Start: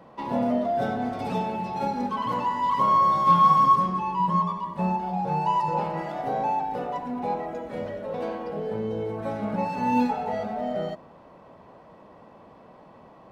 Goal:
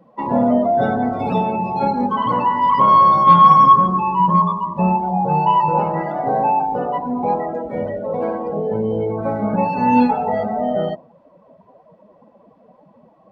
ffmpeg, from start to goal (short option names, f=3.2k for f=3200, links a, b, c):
-af "afftdn=nr=19:nf=-39,acontrast=38,volume=3.5dB"